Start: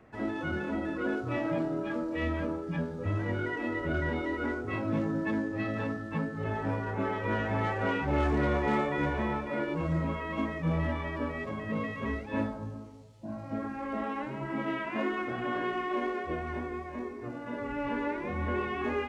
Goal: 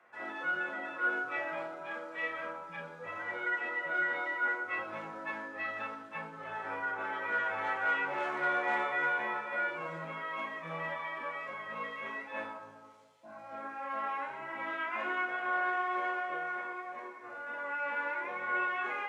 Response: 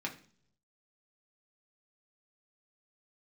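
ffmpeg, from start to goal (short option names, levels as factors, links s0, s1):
-filter_complex "[0:a]highpass=840,areverse,acompressor=mode=upward:threshold=0.00158:ratio=2.5,areverse[s0];[1:a]atrim=start_sample=2205,asetrate=26901,aresample=44100[s1];[s0][s1]afir=irnorm=-1:irlink=0,volume=0.668"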